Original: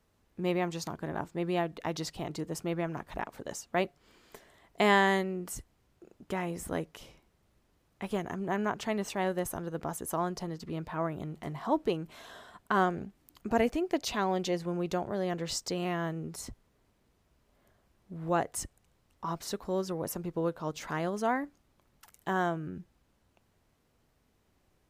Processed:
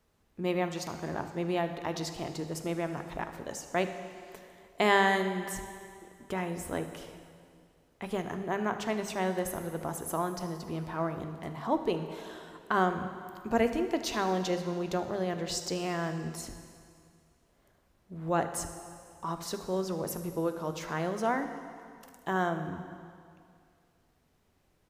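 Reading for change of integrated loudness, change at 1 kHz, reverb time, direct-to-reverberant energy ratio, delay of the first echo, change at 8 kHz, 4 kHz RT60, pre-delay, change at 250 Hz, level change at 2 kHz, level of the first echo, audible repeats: +0.5 dB, +0.5 dB, 2.3 s, 7.5 dB, 76 ms, +0.5 dB, 2.2 s, 6 ms, 0.0 dB, +1.0 dB, −17.0 dB, 1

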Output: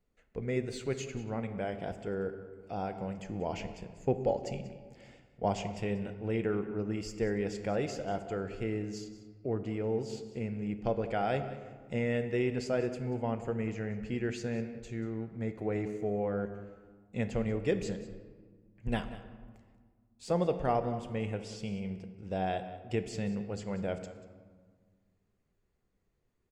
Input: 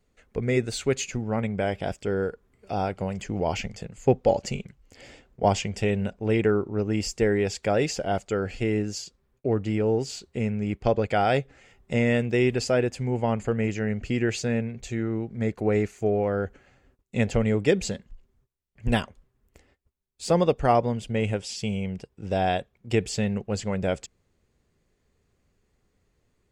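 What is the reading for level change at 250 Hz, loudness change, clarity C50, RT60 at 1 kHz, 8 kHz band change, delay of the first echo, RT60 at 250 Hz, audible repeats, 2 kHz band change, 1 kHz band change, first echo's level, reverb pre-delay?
−8.0 dB, −8.5 dB, 10.0 dB, 1.7 s, −13.5 dB, 187 ms, 2.2 s, 1, −10.0 dB, −8.5 dB, −16.0 dB, 3 ms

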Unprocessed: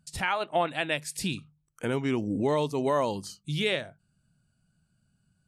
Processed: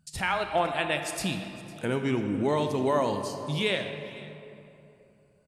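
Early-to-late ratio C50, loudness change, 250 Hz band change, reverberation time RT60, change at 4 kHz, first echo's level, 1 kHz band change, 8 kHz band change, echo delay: 6.5 dB, +0.5 dB, +1.0 dB, 3.0 s, +0.5 dB, −20.0 dB, +1.0 dB, +0.5 dB, 504 ms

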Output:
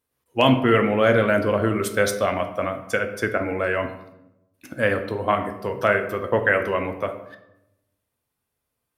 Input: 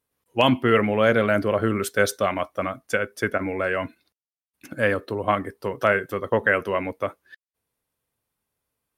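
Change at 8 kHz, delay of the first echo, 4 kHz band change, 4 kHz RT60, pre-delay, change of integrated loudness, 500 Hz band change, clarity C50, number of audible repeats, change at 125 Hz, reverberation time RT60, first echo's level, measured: +0.5 dB, no echo audible, +0.5 dB, 0.55 s, 5 ms, +1.0 dB, +1.5 dB, 10.5 dB, no echo audible, +2.5 dB, 0.90 s, no echo audible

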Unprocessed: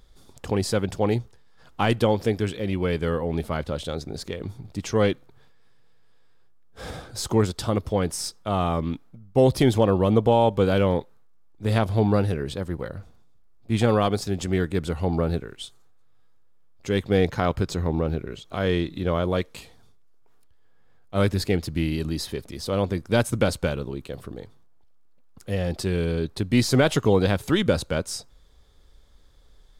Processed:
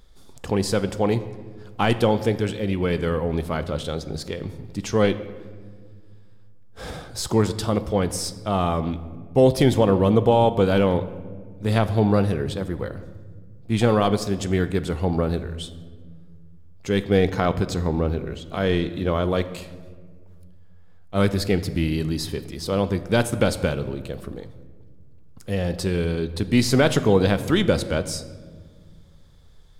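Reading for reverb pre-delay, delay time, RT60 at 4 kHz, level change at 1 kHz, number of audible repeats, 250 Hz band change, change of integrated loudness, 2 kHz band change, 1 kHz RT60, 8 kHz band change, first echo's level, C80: 5 ms, no echo audible, 0.95 s, +2.0 dB, no echo audible, +2.0 dB, +1.5 dB, +2.0 dB, 1.4 s, +1.5 dB, no echo audible, 15.0 dB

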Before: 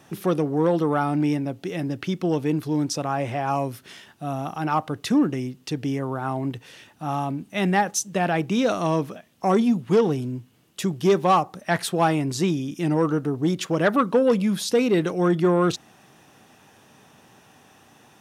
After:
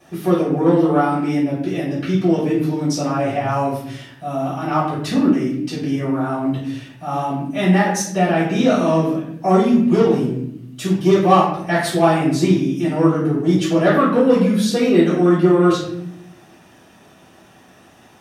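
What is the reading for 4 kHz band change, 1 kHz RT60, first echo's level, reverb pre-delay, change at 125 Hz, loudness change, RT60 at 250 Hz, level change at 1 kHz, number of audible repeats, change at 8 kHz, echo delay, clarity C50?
+4.0 dB, 0.60 s, no echo audible, 3 ms, +6.0 dB, +6.0 dB, 1.2 s, +4.5 dB, no echo audible, +1.5 dB, no echo audible, 3.5 dB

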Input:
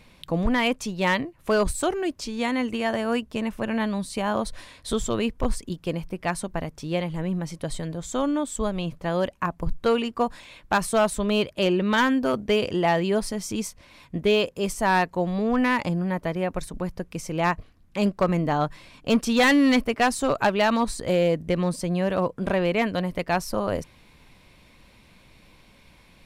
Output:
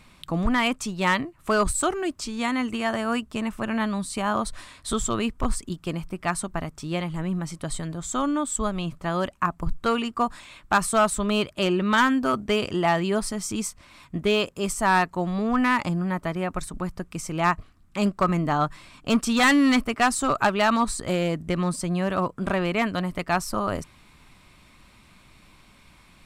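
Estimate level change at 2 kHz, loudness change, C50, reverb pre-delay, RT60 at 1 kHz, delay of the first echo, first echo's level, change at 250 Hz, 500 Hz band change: +1.0 dB, 0.0 dB, no reverb audible, no reverb audible, no reverb audible, no echo audible, no echo audible, 0.0 dB, −3.0 dB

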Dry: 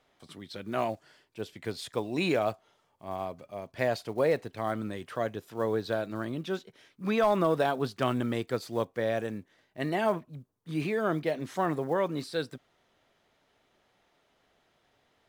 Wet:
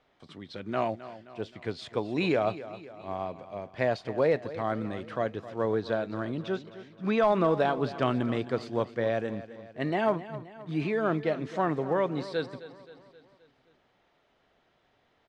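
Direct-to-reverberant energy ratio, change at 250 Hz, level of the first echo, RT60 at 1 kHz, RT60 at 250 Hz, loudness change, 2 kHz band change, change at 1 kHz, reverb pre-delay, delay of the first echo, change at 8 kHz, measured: no reverb audible, +1.5 dB, −15.0 dB, no reverb audible, no reverb audible, +1.0 dB, +0.5 dB, +1.0 dB, no reverb audible, 263 ms, can't be measured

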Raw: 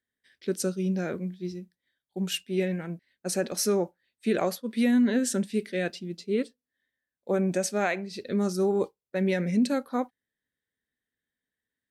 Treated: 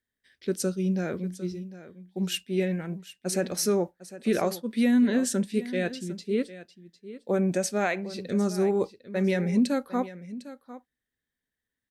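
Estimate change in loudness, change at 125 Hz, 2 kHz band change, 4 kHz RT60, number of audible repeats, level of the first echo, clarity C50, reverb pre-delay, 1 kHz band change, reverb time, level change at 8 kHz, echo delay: +0.5 dB, +1.5 dB, 0.0 dB, no reverb audible, 1, −15.5 dB, no reverb audible, no reverb audible, 0.0 dB, no reverb audible, 0.0 dB, 753 ms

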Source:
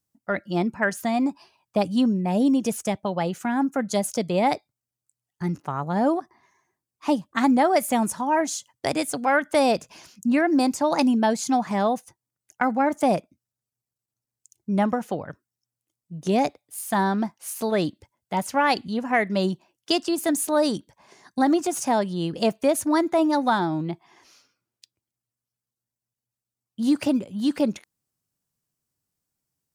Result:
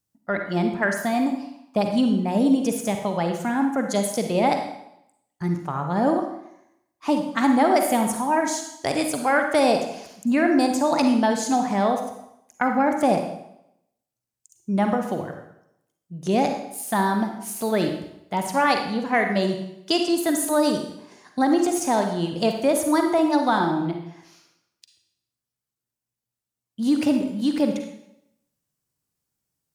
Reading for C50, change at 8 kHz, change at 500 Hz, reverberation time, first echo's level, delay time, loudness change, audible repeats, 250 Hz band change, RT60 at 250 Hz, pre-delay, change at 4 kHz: 5.0 dB, +1.5 dB, +1.5 dB, 0.80 s, no echo audible, no echo audible, +1.0 dB, no echo audible, +1.5 dB, 0.80 s, 38 ms, +1.5 dB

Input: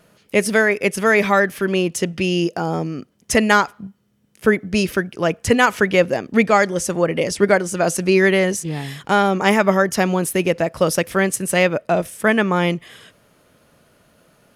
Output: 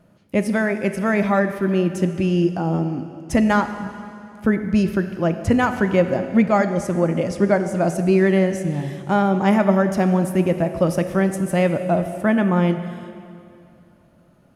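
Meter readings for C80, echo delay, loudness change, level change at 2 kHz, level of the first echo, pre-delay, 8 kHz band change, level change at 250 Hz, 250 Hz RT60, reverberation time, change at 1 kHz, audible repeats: 10.5 dB, no echo audible, −1.5 dB, −7.5 dB, no echo audible, 6 ms, −12.0 dB, +2.5 dB, 2.5 s, 2.5 s, −3.5 dB, no echo audible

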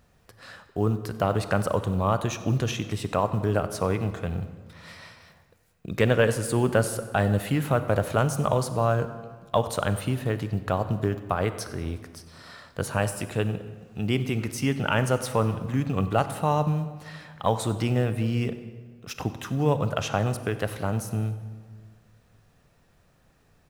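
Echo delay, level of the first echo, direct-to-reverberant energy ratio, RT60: 94 ms, −20.0 dB, 11.0 dB, 1.7 s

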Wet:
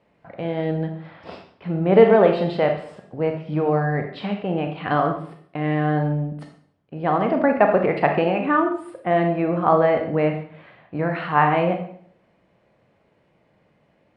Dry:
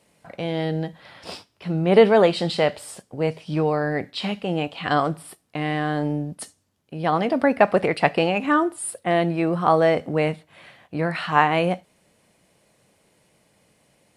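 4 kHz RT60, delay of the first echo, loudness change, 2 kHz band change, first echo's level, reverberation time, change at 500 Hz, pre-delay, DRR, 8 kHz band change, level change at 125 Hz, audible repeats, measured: 0.55 s, no echo audible, +1.0 dB, −1.0 dB, no echo audible, 0.60 s, +1.5 dB, 29 ms, 4.5 dB, below −25 dB, +2.5 dB, no echo audible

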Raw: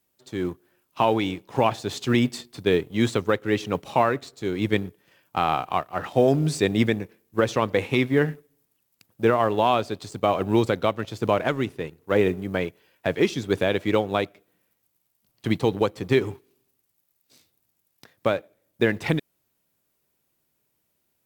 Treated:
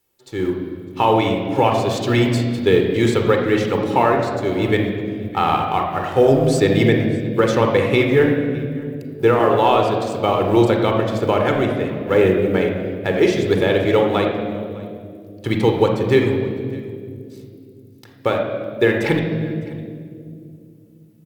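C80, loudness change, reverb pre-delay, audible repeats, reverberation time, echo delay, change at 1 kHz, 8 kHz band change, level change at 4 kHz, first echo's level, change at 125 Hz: 5.5 dB, +6.5 dB, 32 ms, 1, 2.4 s, 606 ms, +6.0 dB, can't be measured, +5.0 dB, −22.0 dB, +7.5 dB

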